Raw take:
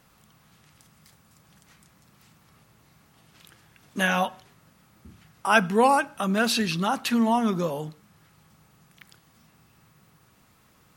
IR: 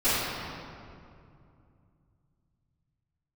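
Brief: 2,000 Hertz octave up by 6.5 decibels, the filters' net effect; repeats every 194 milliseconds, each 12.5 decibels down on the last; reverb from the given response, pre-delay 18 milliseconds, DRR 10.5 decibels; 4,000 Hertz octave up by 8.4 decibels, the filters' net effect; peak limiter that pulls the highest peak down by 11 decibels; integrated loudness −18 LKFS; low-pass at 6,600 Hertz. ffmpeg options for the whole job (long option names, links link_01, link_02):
-filter_complex "[0:a]lowpass=6600,equalizer=frequency=2000:width_type=o:gain=7.5,equalizer=frequency=4000:width_type=o:gain=8.5,alimiter=limit=-10dB:level=0:latency=1,aecho=1:1:194|388|582:0.237|0.0569|0.0137,asplit=2[link_01][link_02];[1:a]atrim=start_sample=2205,adelay=18[link_03];[link_02][link_03]afir=irnorm=-1:irlink=0,volume=-26.5dB[link_04];[link_01][link_04]amix=inputs=2:normalize=0,volume=4dB"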